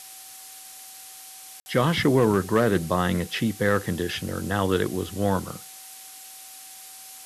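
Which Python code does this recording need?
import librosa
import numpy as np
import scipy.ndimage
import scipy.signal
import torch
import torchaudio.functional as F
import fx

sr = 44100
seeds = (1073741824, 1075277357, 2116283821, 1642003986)

y = fx.fix_declip(x, sr, threshold_db=-11.0)
y = fx.notch(y, sr, hz=760.0, q=30.0)
y = fx.fix_ambience(y, sr, seeds[0], print_start_s=6.43, print_end_s=6.93, start_s=1.6, end_s=1.66)
y = fx.noise_reduce(y, sr, print_start_s=6.43, print_end_s=6.93, reduce_db=26.0)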